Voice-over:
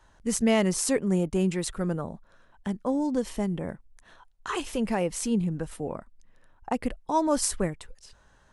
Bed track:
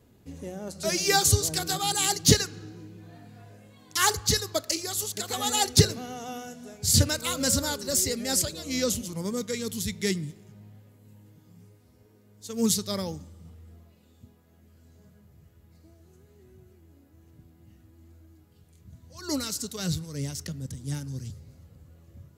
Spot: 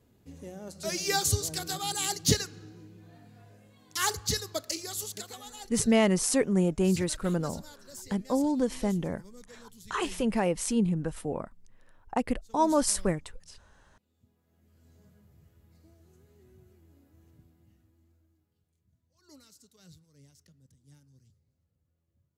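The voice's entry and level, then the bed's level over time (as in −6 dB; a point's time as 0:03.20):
5.45 s, 0.0 dB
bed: 0:05.16 −5.5 dB
0:05.52 −20.5 dB
0:13.90 −20.5 dB
0:14.90 −4 dB
0:17.26 −4 dB
0:19.17 −25.5 dB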